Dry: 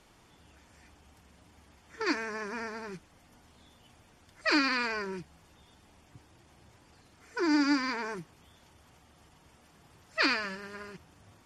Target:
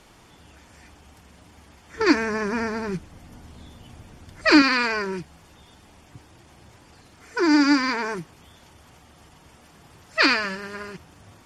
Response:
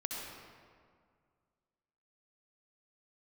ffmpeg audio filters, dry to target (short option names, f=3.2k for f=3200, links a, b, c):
-filter_complex "[0:a]asettb=1/sr,asplit=3[a][b][c];[a]atrim=end=1.964[d];[b]atrim=start=1.96:end=4.62,asetpts=PTS-STARTPTS,afade=t=in:d=0.004:c=qsin,afade=t=out:st=2.656:d=0.004:c=qsin,lowshelf=f=330:g=10[e];[c]atrim=start=4.616[f];[d][e]acrossfade=d=0.004:c1=hsin:c2=qsin[g];[g][f]acrossfade=d=0.004:c1=qsin:c2=hsin,volume=8.5dB"